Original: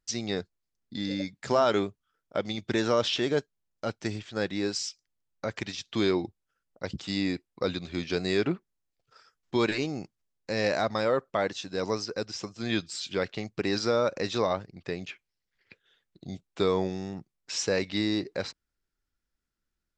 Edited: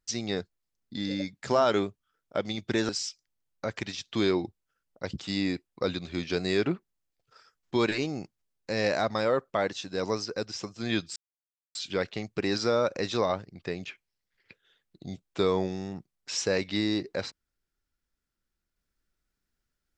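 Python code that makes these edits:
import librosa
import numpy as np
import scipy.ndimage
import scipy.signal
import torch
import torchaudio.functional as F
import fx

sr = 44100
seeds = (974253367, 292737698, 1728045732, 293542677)

y = fx.edit(x, sr, fx.cut(start_s=2.89, length_s=1.8),
    fx.insert_silence(at_s=12.96, length_s=0.59), tone=tone)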